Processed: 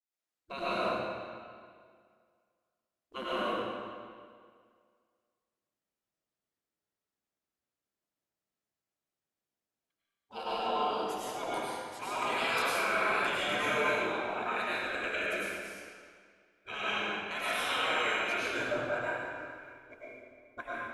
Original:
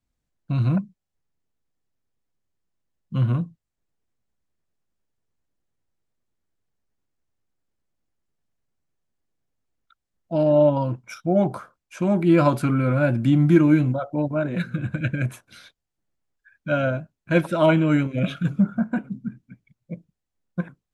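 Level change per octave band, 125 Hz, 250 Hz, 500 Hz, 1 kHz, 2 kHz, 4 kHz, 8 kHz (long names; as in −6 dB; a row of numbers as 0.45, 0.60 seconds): −30.0 dB, −22.0 dB, −11.5 dB, −1.5 dB, +1.0 dB, +5.5 dB, can't be measured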